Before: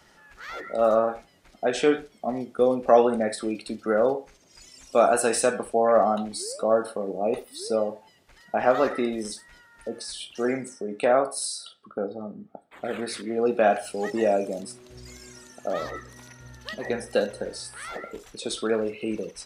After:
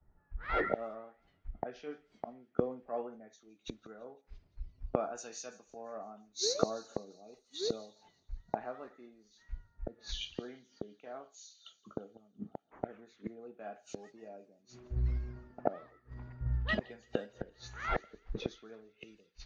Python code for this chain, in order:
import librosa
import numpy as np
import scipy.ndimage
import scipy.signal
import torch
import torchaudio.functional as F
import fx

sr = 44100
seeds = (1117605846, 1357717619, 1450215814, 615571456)

y = fx.freq_compress(x, sr, knee_hz=3100.0, ratio=1.5)
y = fx.low_shelf(y, sr, hz=91.0, db=12.0)
y = fx.notch(y, sr, hz=540.0, q=12.0)
y = fx.env_lowpass(y, sr, base_hz=880.0, full_db=-23.0)
y = fx.gate_flip(y, sr, shuts_db=-26.0, range_db=-25)
y = fx.echo_wet_highpass(y, sr, ms=171, feedback_pct=83, hz=2900.0, wet_db=-16.5)
y = fx.band_widen(y, sr, depth_pct=100)
y = y * 10.0 ** (2.0 / 20.0)